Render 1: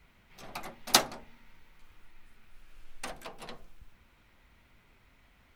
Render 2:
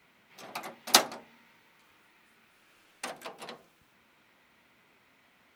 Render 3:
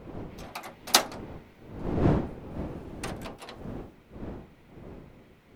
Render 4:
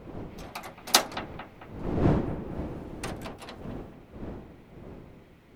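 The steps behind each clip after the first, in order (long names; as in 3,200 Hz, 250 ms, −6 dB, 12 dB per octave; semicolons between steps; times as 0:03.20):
high-pass filter 210 Hz 12 dB per octave; level +2 dB
wind on the microphone 350 Hz −35 dBFS
bucket-brigade delay 222 ms, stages 4,096, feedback 48%, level −12 dB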